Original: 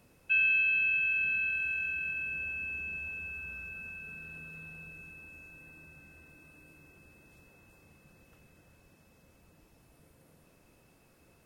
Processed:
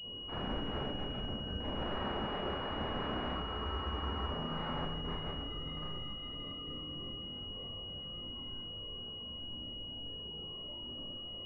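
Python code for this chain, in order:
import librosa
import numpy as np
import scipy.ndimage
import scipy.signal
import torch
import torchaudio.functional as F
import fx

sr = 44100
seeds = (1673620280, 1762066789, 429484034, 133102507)

y = fx.spec_topn(x, sr, count=64)
y = fx.env_lowpass_down(y, sr, base_hz=780.0, full_db=-29.0)
y = fx.chorus_voices(y, sr, voices=6, hz=0.19, base_ms=19, depth_ms=2.3, mix_pct=50)
y = fx.formant_shift(y, sr, semitones=-4)
y = (np.mod(10.0 ** (45.5 / 20.0) * y + 1.0, 2.0) - 1.0) / 10.0 ** (45.5 / 20.0)
y = fx.rev_schroeder(y, sr, rt60_s=0.62, comb_ms=29, drr_db=-9.0)
y = fx.spec_freeze(y, sr, seeds[0], at_s=3.48, hold_s=0.83)
y = fx.pwm(y, sr, carrier_hz=2900.0)
y = y * librosa.db_to_amplitude(6.5)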